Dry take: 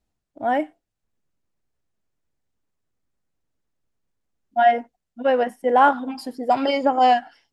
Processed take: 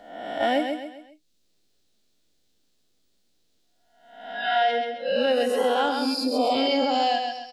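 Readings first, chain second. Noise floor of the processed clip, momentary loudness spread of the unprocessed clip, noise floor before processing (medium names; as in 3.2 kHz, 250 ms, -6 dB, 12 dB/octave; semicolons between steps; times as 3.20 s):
-67 dBFS, 12 LU, -82 dBFS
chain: reverse spectral sustain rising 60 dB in 0.76 s; graphic EQ 125/1000/2000/4000 Hz -10/-10/-5/+11 dB; spectral noise reduction 17 dB; in parallel at -2 dB: compression, threshold -33 dBFS, peak gain reduction 16.5 dB; on the sum: peak limiter -14.5 dBFS, peak gain reduction 7 dB; feedback delay 132 ms, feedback 29%, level -7 dB; three bands compressed up and down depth 70%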